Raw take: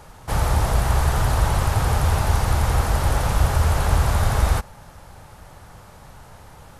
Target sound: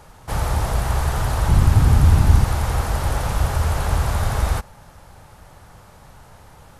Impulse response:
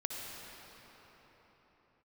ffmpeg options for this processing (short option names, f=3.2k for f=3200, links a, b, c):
-filter_complex "[0:a]asettb=1/sr,asplit=3[a][b][c];[a]atrim=end=1.484[d];[b]atrim=start=1.48:end=2.44,asetpts=PTS-STARTPTS,afade=t=in:d=0.004:c=qsin,afade=t=out:st=0.956:d=0.004:c=qsin,lowshelf=f=370:t=q:w=1.5:g=8[e];[c]atrim=start=2.436[f];[d][e]acrossfade=d=0.004:c1=hsin:c2=qsin[g];[g][f]acrossfade=d=0.004:c1=qsin:c2=hsin,volume=-1.5dB"